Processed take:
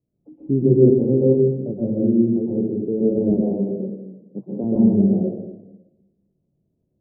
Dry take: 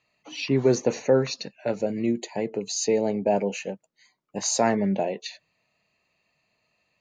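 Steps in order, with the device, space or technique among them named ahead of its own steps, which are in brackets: 3.18–4.64 Chebyshev band-pass 130–1500 Hz, order 5; next room (LPF 370 Hz 24 dB/oct; reverb RT60 1.0 s, pre-delay 0.113 s, DRR -5.5 dB); gain +4 dB

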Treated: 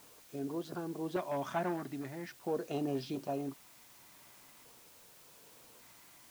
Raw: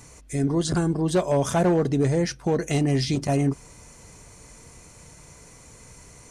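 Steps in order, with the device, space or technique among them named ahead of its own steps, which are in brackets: shortwave radio (BPF 320–2600 Hz; tremolo 0.69 Hz, depth 41%; LFO notch square 0.43 Hz 470–2000 Hz; white noise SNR 19 dB); bell 110 Hz +2.5 dB; gain -7.5 dB

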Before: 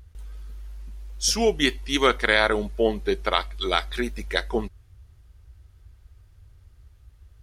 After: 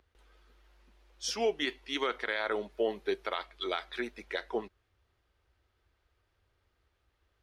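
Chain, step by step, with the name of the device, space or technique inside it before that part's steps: DJ mixer with the lows and highs turned down (three-band isolator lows -20 dB, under 270 Hz, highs -14 dB, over 4600 Hz; limiter -13.5 dBFS, peak gain reduction 8.5 dB); 2.7–3.36 high shelf 11000 Hz +11 dB; gain -6 dB

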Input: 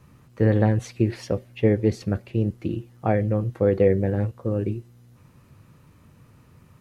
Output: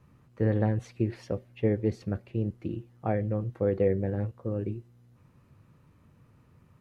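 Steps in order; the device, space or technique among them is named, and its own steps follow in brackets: behind a face mask (high shelf 3400 Hz -7.5 dB); gain -6.5 dB

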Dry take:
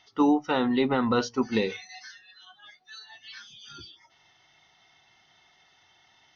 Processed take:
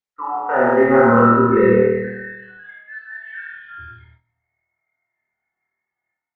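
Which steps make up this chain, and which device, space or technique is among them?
elliptic low-pass 1800 Hz, stop band 80 dB; spectral noise reduction 22 dB; low shelf 180 Hz -5 dB; flutter echo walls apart 4.4 m, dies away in 0.87 s; speakerphone in a meeting room (reverb RT60 0.80 s, pre-delay 54 ms, DRR -1 dB; AGC gain up to 12.5 dB; gate -48 dBFS, range -16 dB; Opus 20 kbps 48000 Hz)

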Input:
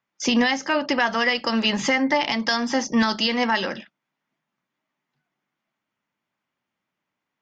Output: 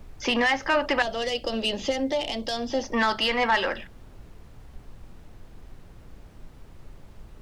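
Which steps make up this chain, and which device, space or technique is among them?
aircraft cabin announcement (BPF 410–3000 Hz; soft clip -17 dBFS, distortion -15 dB; brown noise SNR 16 dB); 1.02–2.84 band shelf 1400 Hz -16 dB; gain +3 dB

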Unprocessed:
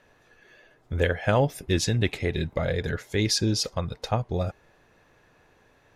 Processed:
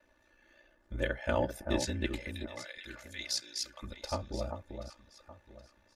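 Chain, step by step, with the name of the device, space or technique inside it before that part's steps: 2.19–3.83 Bessel high-pass 1800 Hz, order 2; echo with dull and thin repeats by turns 0.388 s, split 1400 Hz, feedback 53%, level -6.5 dB; ring-modulated robot voice (ring modulator 30 Hz; comb 3.4 ms, depth 99%); gain -8.5 dB

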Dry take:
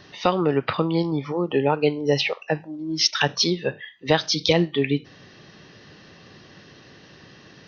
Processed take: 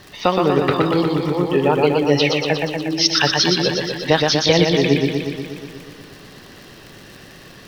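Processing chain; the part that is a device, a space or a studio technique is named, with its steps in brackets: vinyl LP (crackle 77/s -33 dBFS; pink noise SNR 32 dB); warbling echo 0.12 s, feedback 69%, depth 63 cents, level -3.5 dB; gain +3 dB

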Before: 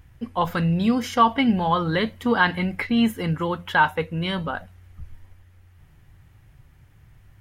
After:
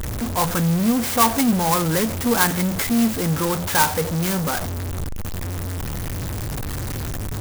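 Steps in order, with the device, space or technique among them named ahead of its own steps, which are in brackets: early CD player with a faulty converter (zero-crossing step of -19.5 dBFS; clock jitter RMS 0.098 ms); gain -1.5 dB

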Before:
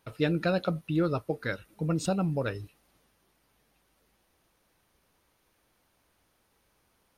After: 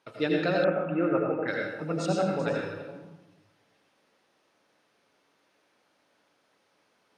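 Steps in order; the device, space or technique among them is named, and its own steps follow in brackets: reverse delay 0.371 s, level -14 dB; supermarket ceiling speaker (BPF 250–6200 Hz; reverb RT60 0.95 s, pre-delay 75 ms, DRR -1 dB); 0.64–1.48 steep low-pass 2600 Hz 48 dB/oct

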